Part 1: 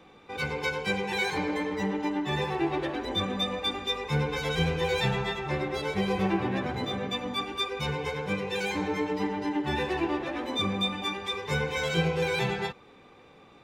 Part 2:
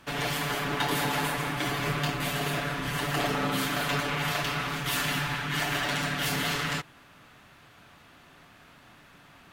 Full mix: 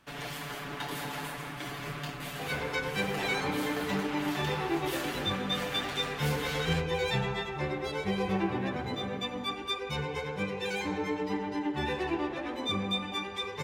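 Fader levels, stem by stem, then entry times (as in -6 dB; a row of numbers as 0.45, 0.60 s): -3.0, -9.0 dB; 2.10, 0.00 s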